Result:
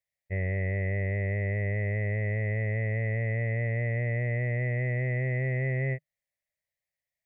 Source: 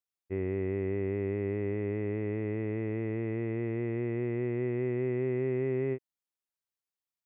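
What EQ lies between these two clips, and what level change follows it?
EQ curve 150 Hz 0 dB, 340 Hz -26 dB, 590 Hz +5 dB, 880 Hz -13 dB, 1300 Hz -25 dB, 1900 Hz +7 dB, 2800 Hz -9 dB; +8.5 dB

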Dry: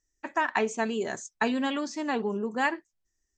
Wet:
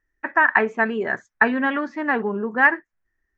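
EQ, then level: synth low-pass 1700 Hz, resonance Q 3.1; +4.5 dB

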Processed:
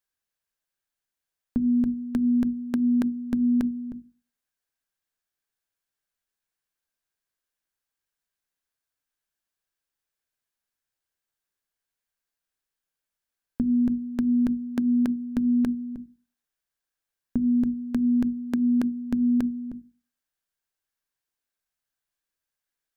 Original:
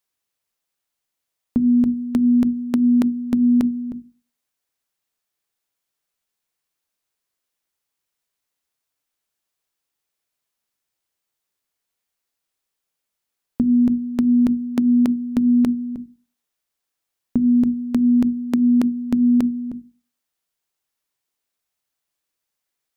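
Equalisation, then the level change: low shelf 64 Hz +10 dB; bell 1600 Hz +9 dB 0.2 oct; -7.0 dB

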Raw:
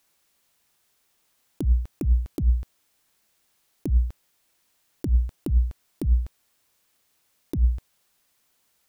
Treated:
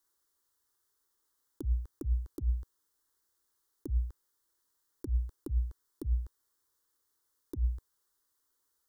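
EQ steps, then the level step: fixed phaser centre 670 Hz, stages 6; -8.5 dB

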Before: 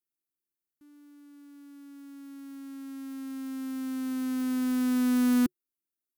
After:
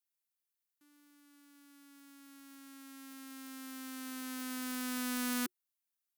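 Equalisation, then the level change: HPF 1500 Hz 6 dB/oct; +1.5 dB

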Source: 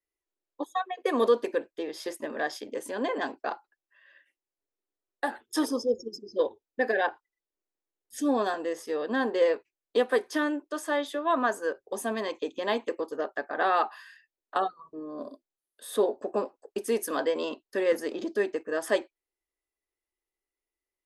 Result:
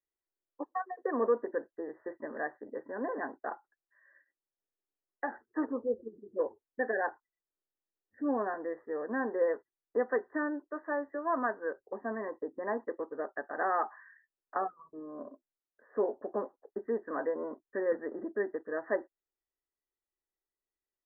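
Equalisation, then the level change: brick-wall FIR low-pass 2000 Hz; -5.5 dB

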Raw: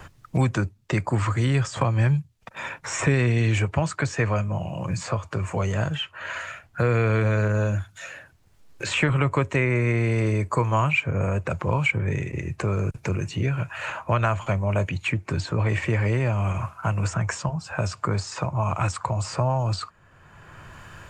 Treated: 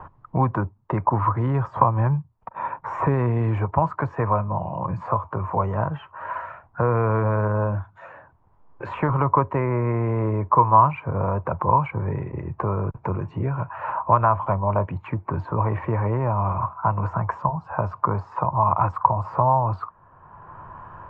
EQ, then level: synth low-pass 990 Hz, resonance Q 4.9; -1.0 dB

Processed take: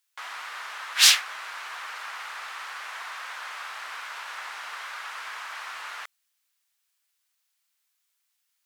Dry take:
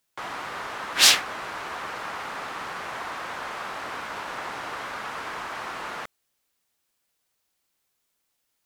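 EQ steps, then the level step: HPF 1300 Hz 12 dB/oct; 0.0 dB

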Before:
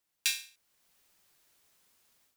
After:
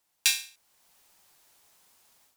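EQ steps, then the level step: bell 840 Hz +7 dB 0.81 oct; bell 8500 Hz +3 dB 2.3 oct; +4.0 dB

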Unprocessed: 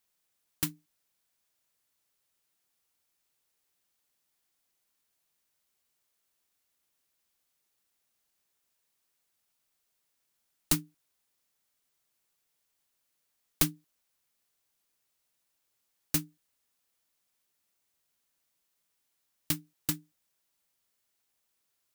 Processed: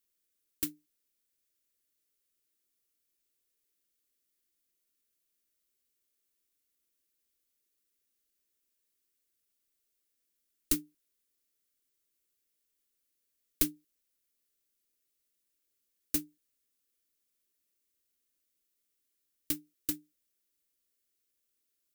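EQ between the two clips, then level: tilt shelf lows +3.5 dB, about 740 Hz; high shelf 7800 Hz +6 dB; fixed phaser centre 340 Hz, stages 4; -3.0 dB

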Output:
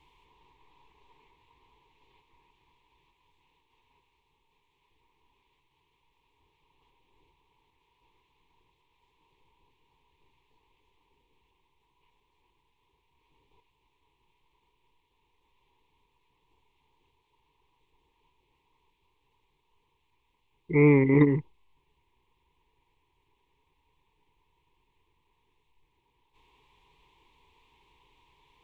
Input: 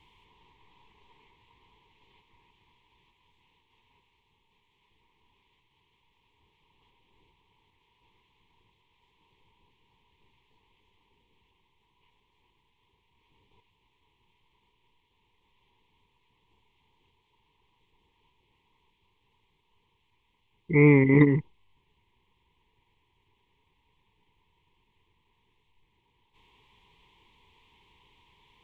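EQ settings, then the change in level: thirty-one-band EQ 100 Hz -10 dB, 200 Hz -11 dB, 2000 Hz -5 dB, 3150 Hz -6 dB; 0.0 dB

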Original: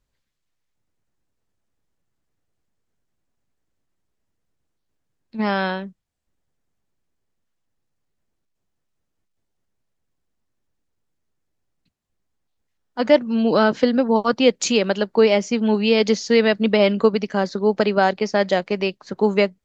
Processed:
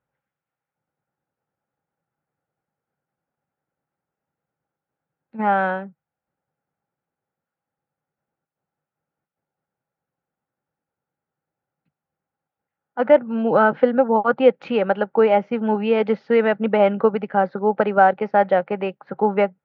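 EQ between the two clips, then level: air absorption 63 m; speaker cabinet 120–2600 Hz, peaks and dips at 150 Hz +8 dB, 530 Hz +8 dB, 1400 Hz +10 dB; bell 810 Hz +13.5 dB 0.23 oct; -4.0 dB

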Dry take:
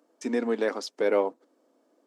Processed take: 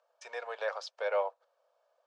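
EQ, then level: elliptic high-pass 560 Hz, stop band 50 dB; LPF 4600 Hz 12 dB/oct; notch 2000 Hz, Q 6.7; -2.0 dB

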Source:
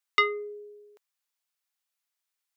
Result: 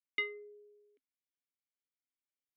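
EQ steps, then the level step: vowel filter i; tilt -3 dB/oct; dynamic EQ 2900 Hz, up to +6 dB, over -53 dBFS, Q 0.84; 0.0 dB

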